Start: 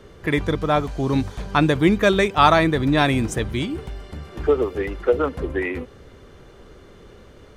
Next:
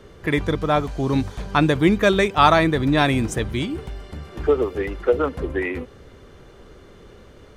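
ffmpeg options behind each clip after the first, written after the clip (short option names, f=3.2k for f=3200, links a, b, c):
-af anull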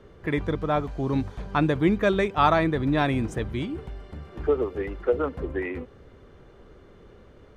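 -af "highshelf=f=3.6k:g=-11.5,volume=-4.5dB"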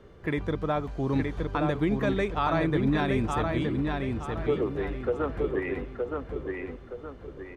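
-filter_complex "[0:a]alimiter=limit=-16dB:level=0:latency=1:release=160,asplit=2[a][b];[b]adelay=919,lowpass=f=5k:p=1,volume=-3.5dB,asplit=2[c][d];[d]adelay=919,lowpass=f=5k:p=1,volume=0.39,asplit=2[e][f];[f]adelay=919,lowpass=f=5k:p=1,volume=0.39,asplit=2[g][h];[h]adelay=919,lowpass=f=5k:p=1,volume=0.39,asplit=2[i][j];[j]adelay=919,lowpass=f=5k:p=1,volume=0.39[k];[a][c][e][g][i][k]amix=inputs=6:normalize=0,volume=-1.5dB"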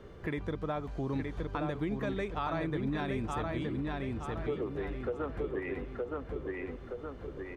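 -af "acompressor=threshold=-40dB:ratio=2,volume=1.5dB"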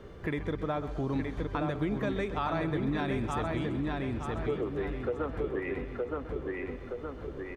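-af "aecho=1:1:130|260|390|520|650|780:0.211|0.123|0.0711|0.0412|0.0239|0.0139,volume=2.5dB"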